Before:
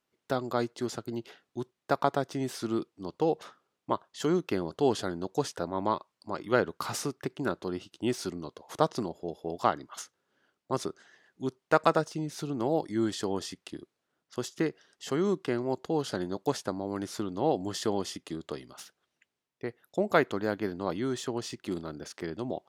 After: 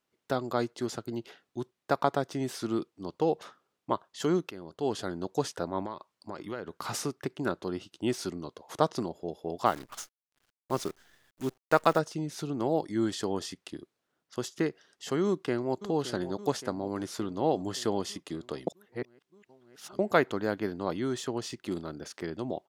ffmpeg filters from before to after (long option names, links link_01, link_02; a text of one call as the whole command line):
ffmpeg -i in.wav -filter_complex "[0:a]asettb=1/sr,asplit=3[link_01][link_02][link_03];[link_01]atrim=end=5.824[link_04];[link_02]atrim=start=5.82:end=6.86,asetpts=PTS-STARTPTS,afade=type=in:duration=0.004:curve=qsin,afade=type=out:start_time=1.036:duration=0.004:curve=qsin,acompressor=threshold=-33dB:ratio=5:attack=3.2:release=140:knee=1:detection=peak[link_05];[link_03]atrim=start=6.856[link_06];[link_04][link_05]acrossfade=duration=0.004:curve1=hsin:curve2=qsin[link_07];[link_07][link_06]acrossfade=duration=0.004:curve1=qsin:curve2=hsin,asettb=1/sr,asplit=3[link_08][link_09][link_10];[link_08]atrim=end=9.664[link_11];[link_09]atrim=start=9.66:end=11.99,asetpts=PTS-STARTPTS,afade=type=in:duration=0.004:curve=qsin,afade=type=out:start_time=2.326:duration=0.004:curve=qsin,acrusher=bits=8:dc=4:mix=0:aa=0.000001[link_12];[link_10]atrim=start=11.986[link_13];[link_11][link_12]acrossfade=duration=0.004:curve1=hsin:curve2=qsin[link_14];[link_14][link_13]acrossfade=duration=0.004:curve1=qsin:curve2=hsin,asplit=2[link_15][link_16];[link_16]afade=type=in:start_time=15.24:duration=0.01,afade=type=out:start_time=15.81:duration=0.01,aecho=0:1:570|1140|1710|2280|2850|3420|3990|4560|5130:0.223872|0.15671|0.109697|0.0767881|0.0537517|0.0376262|0.0263383|0.0184368|0.0129058[link_17];[link_15][link_17]amix=inputs=2:normalize=0,asplit=4[link_18][link_19][link_20][link_21];[link_18]atrim=end=4.51,asetpts=PTS-STARTPTS,afade=type=out:start_time=4.506:duration=0.004:curve=hsin:silence=0.149624[link_22];[link_19]atrim=start=4.51:end=18.672,asetpts=PTS-STARTPTS,afade=type=in:duration=0.71:silence=0.149624[link_23];[link_20]atrim=start=18.668:end=19.992,asetpts=PTS-STARTPTS,areverse[link_24];[link_21]atrim=start=19.988[link_25];[link_22][link_23]concat=n=2:v=0:a=1[link_26];[link_26][link_24]acrossfade=duration=0.004:curve1=hsin:curve2=hsin[link_27];[link_27][link_25]acrossfade=duration=0.004:curve1=hsin:curve2=hsin" out.wav